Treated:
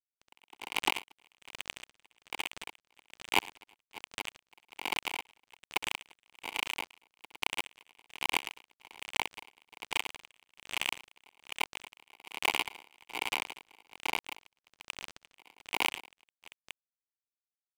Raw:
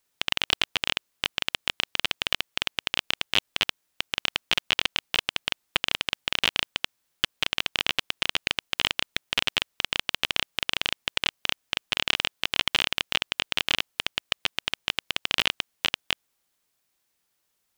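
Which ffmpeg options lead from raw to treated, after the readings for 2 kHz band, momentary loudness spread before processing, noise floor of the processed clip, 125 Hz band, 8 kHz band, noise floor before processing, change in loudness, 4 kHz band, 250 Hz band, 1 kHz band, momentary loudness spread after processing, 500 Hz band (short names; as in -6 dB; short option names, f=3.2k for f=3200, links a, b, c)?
-8.0 dB, 5 LU, under -85 dBFS, -15.0 dB, -5.5 dB, -76 dBFS, -8.5 dB, -13.5 dB, -7.0 dB, -2.5 dB, 20 LU, -7.0 dB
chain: -filter_complex "[0:a]aeval=exprs='val(0)+0.5*0.0501*sgn(val(0))':c=same,lowpass=4.8k,bandreject=f=51.69:t=h:w=4,bandreject=f=103.38:t=h:w=4,bandreject=f=155.07:t=h:w=4,bandreject=f=206.76:t=h:w=4,bandreject=f=258.45:t=h:w=4,bandreject=f=310.14:t=h:w=4,bandreject=f=361.83:t=h:w=4,bandreject=f=413.52:t=h:w=4,bandreject=f=465.21:t=h:w=4,bandreject=f=516.9:t=h:w=4,bandreject=f=568.59:t=h:w=4,bandreject=f=620.28:t=h:w=4,bandreject=f=671.97:t=h:w=4,bandreject=f=723.66:t=h:w=4,bandreject=f=775.35:t=h:w=4,bandreject=f=827.04:t=h:w=4,agate=range=-12dB:threshold=-28dB:ratio=16:detection=peak,asplit=3[a][b][c];[a]bandpass=f=300:t=q:w=8,volume=0dB[d];[b]bandpass=f=870:t=q:w=8,volume=-6dB[e];[c]bandpass=f=2.24k:t=q:w=8,volume=-9dB[f];[d][e][f]amix=inputs=3:normalize=0,equalizer=f=620:w=0.85:g=15,asplit=2[g][h];[h]highpass=f=720:p=1,volume=16dB,asoftclip=type=tanh:threshold=-12.5dB[i];[g][i]amix=inputs=2:normalize=0,lowpass=f=3.7k:p=1,volume=-6dB,acrusher=bits=3:mix=0:aa=0.5,aecho=1:1:65|109|347|579:0.119|0.211|0.668|0.335,aeval=exprs='val(0)*pow(10,-34*(0.5-0.5*cos(2*PI*1.2*n/s))/20)':c=same,volume=4.5dB"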